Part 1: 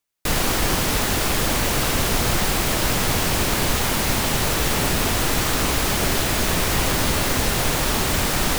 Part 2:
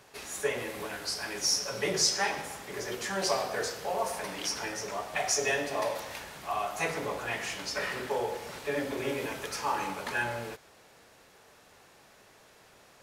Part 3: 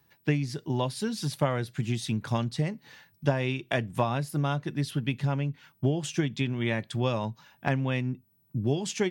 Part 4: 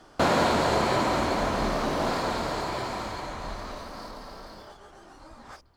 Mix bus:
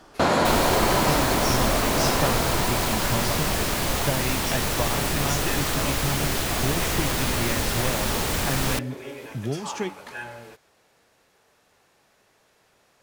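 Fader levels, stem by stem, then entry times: -4.5, -5.0, -2.0, +2.0 dB; 0.20, 0.00, 0.80, 0.00 s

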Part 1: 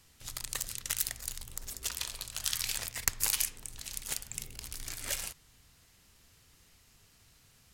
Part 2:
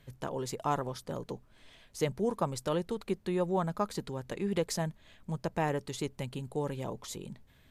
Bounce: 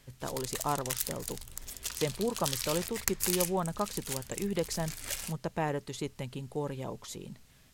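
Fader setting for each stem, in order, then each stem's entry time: -1.5, -1.0 dB; 0.00, 0.00 s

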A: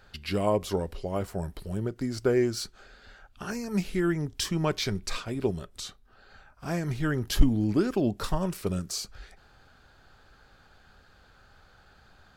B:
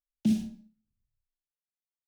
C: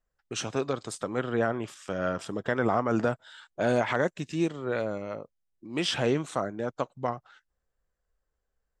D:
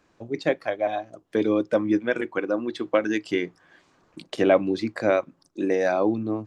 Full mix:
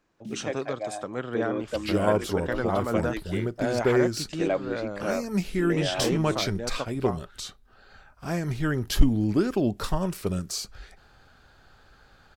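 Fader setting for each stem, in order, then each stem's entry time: +1.5, -14.0, -2.5, -8.5 dB; 1.60, 0.00, 0.00, 0.00 s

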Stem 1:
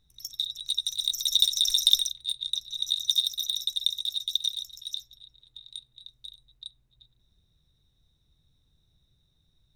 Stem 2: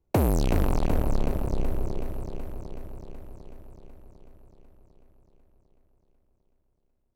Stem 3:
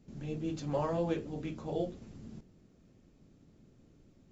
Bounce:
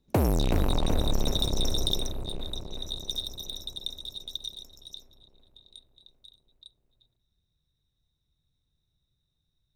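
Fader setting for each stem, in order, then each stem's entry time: -9.0, -1.5, -12.5 dB; 0.00, 0.00, 0.00 s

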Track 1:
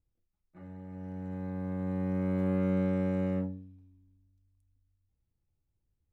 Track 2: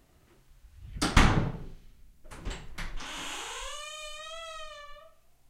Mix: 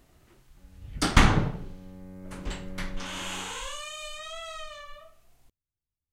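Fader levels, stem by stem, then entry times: -13.5, +2.5 dB; 0.00, 0.00 s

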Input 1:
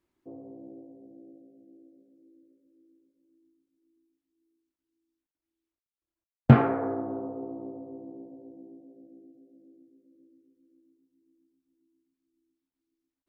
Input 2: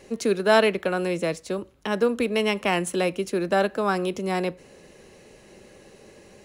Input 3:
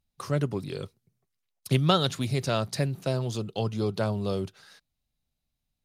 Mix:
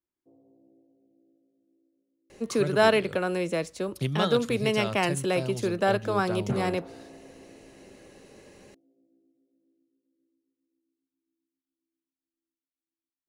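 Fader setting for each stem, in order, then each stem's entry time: -15.5, -2.5, -5.5 dB; 0.00, 2.30, 2.30 s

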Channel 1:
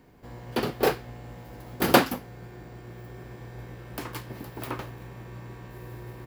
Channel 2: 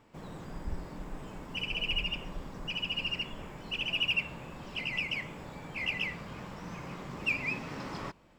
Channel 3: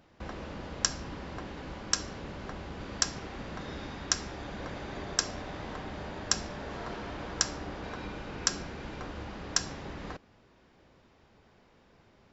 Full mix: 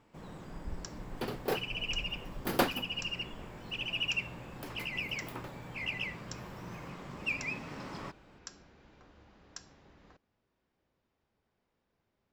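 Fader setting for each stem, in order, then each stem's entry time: -10.0, -3.5, -19.0 dB; 0.65, 0.00, 0.00 s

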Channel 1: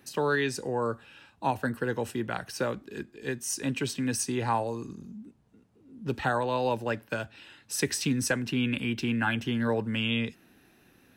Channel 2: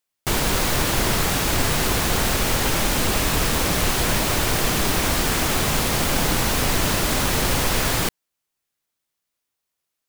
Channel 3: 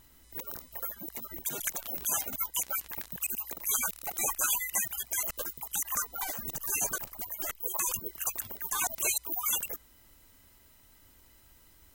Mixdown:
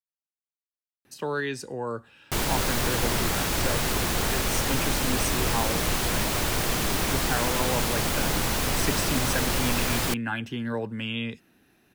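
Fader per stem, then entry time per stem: -2.5 dB, -5.0 dB, off; 1.05 s, 2.05 s, off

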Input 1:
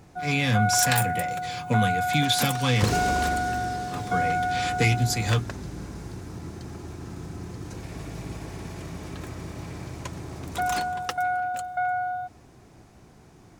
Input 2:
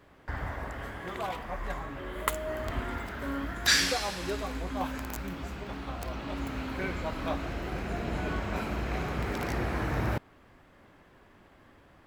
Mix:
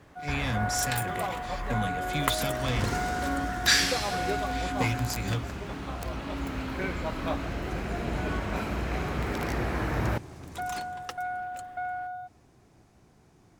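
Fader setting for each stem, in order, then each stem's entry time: -7.5, +1.5 dB; 0.00, 0.00 s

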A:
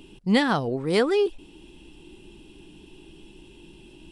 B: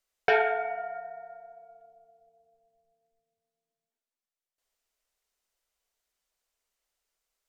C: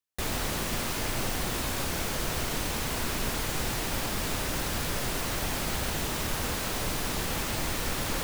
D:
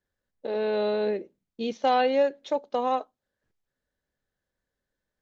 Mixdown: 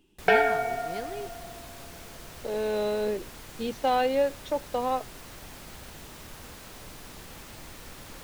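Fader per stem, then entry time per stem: -17.5, +2.5, -14.0, -2.0 dB; 0.00, 0.00, 0.00, 2.00 s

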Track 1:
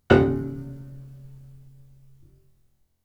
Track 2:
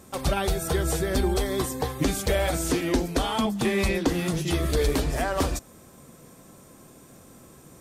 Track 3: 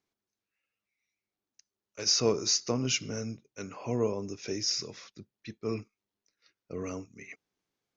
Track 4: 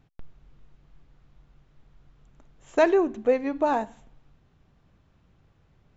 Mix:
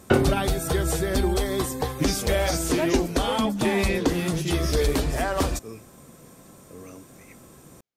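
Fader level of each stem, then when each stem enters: -3.5, +1.0, -7.0, -9.0 dB; 0.00, 0.00, 0.00, 0.00 s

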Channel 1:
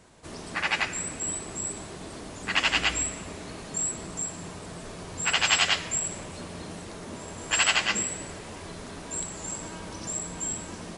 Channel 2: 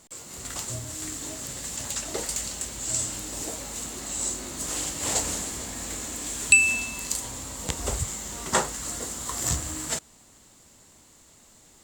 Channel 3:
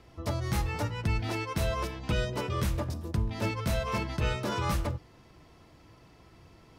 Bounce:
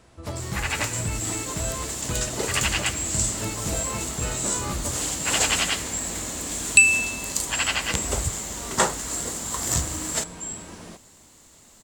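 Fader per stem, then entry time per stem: -2.0, +2.5, -1.5 dB; 0.00, 0.25, 0.00 s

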